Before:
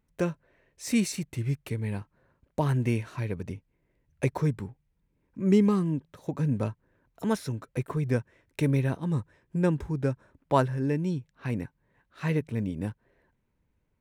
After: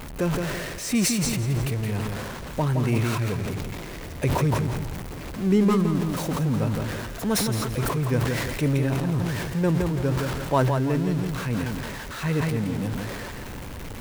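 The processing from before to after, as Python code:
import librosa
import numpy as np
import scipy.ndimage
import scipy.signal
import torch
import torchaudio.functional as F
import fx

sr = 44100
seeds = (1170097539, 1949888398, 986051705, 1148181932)

y = x + 0.5 * 10.0 ** (-31.0 / 20.0) * np.sign(x)
y = fx.echo_feedback(y, sr, ms=168, feedback_pct=36, wet_db=-6.0)
y = fx.sustainer(y, sr, db_per_s=25.0)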